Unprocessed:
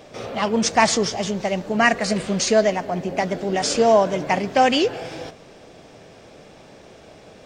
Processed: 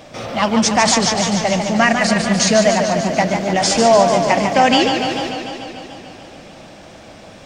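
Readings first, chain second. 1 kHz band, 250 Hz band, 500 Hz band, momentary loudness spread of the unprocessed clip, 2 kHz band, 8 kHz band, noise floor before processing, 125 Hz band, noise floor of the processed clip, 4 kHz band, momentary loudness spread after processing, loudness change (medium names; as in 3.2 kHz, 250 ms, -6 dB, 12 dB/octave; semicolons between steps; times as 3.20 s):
+5.5 dB, +6.5 dB, +4.0 dB, 9 LU, +5.0 dB, +7.5 dB, -47 dBFS, +7.0 dB, -40 dBFS, +7.0 dB, 14 LU, +5.0 dB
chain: peaking EQ 420 Hz -11.5 dB 0.31 oct; loudness maximiser +9 dB; modulated delay 147 ms, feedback 72%, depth 97 cents, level -6.5 dB; trim -3 dB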